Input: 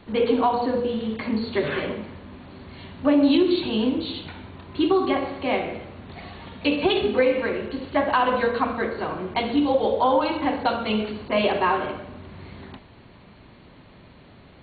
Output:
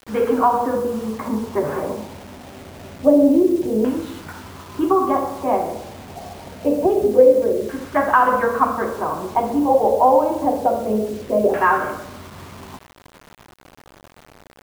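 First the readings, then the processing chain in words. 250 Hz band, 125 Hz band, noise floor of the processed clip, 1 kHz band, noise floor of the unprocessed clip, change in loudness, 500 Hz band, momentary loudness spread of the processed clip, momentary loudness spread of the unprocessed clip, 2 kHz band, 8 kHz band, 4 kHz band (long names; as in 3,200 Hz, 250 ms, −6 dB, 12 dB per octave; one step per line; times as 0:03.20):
+2.5 dB, +1.5 dB, −49 dBFS, +6.0 dB, −49 dBFS, +4.5 dB, +5.5 dB, 22 LU, 20 LU, +1.5 dB, can't be measured, below −10 dB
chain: auto-filter low-pass saw down 0.26 Hz 480–1,600 Hz
mains-hum notches 60/120/180/240/300/360 Hz
bit reduction 7 bits
level +1.5 dB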